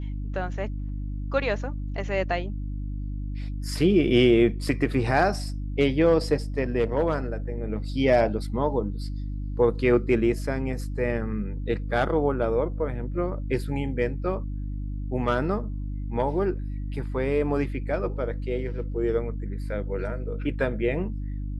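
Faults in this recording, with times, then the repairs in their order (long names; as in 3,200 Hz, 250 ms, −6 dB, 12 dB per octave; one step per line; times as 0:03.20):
mains hum 50 Hz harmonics 6 −31 dBFS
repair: hum removal 50 Hz, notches 6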